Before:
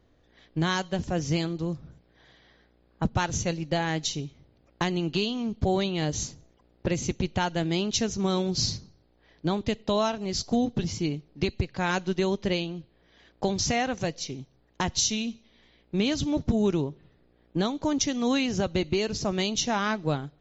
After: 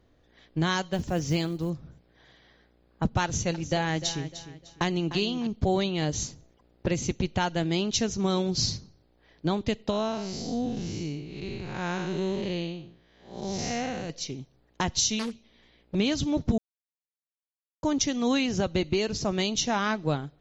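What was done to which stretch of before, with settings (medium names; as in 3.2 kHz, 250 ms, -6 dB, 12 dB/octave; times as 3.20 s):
0.93–1.70 s: short-mantissa float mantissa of 4-bit
3.24–5.47 s: feedback delay 302 ms, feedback 31%, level -12.5 dB
9.90–14.10 s: spectral blur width 233 ms
15.19–15.95 s: loudspeaker Doppler distortion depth 0.87 ms
16.58–17.83 s: mute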